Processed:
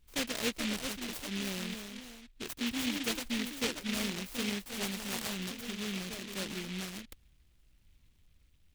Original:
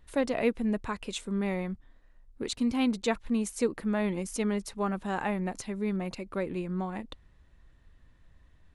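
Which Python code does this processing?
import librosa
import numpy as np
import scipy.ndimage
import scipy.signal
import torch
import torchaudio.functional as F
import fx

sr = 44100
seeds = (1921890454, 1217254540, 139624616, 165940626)

y = fx.echo_pitch(x, sr, ms=442, semitones=2, count=2, db_per_echo=-6.0)
y = fx.noise_mod_delay(y, sr, seeds[0], noise_hz=2700.0, depth_ms=0.37)
y = y * librosa.db_to_amplitude(-7.0)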